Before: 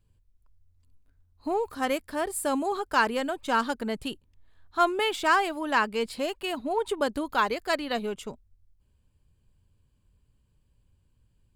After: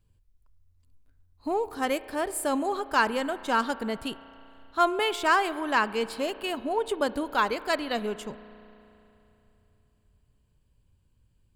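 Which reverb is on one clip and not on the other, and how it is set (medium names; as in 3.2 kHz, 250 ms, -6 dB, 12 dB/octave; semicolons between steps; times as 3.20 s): spring tank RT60 3.1 s, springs 33 ms, chirp 35 ms, DRR 15.5 dB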